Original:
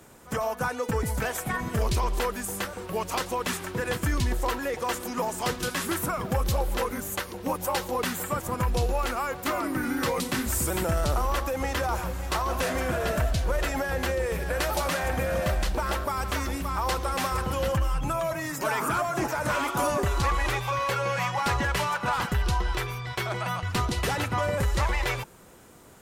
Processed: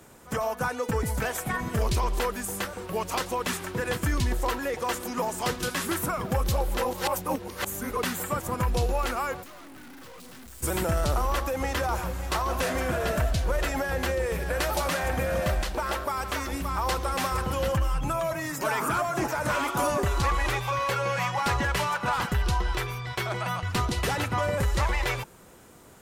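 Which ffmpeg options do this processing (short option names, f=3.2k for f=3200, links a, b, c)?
-filter_complex "[0:a]asplit=3[a][b][c];[a]afade=t=out:st=9.42:d=0.02[d];[b]aeval=exprs='(tanh(200*val(0)+0.65)-tanh(0.65))/200':c=same,afade=t=in:st=9.42:d=0.02,afade=t=out:st=10.62:d=0.02[e];[c]afade=t=in:st=10.62:d=0.02[f];[d][e][f]amix=inputs=3:normalize=0,asettb=1/sr,asplit=3[g][h][i];[g]atrim=end=15.624[j];[h]atrim=start=15.62:end=16.52,asetpts=PTS-STARTPTS,afade=t=in:d=0.004:c=qsin,afade=t=out:st=0.896:d=0.004:c=qsin,bass=f=250:g=-6,treble=f=4k:g=-1[k];[i]atrim=start=16.516[l];[j][k]acrossfade=d=0.004:c1=hsin:c2=qsin[m];[m][l]acrossfade=d=0.004:c1=qsin:c2=hsin,asplit=3[n][o][p];[n]atrim=end=6.852[q];[o]atrim=start=6.848:end=7.972,asetpts=PTS-STARTPTS,areverse[r];[p]atrim=start=7.968[s];[q][r]acrossfade=d=0.004:c1=hsin:c2=hsin[t];[t][s]acrossfade=d=0.004:c1=hsin:c2=hsin"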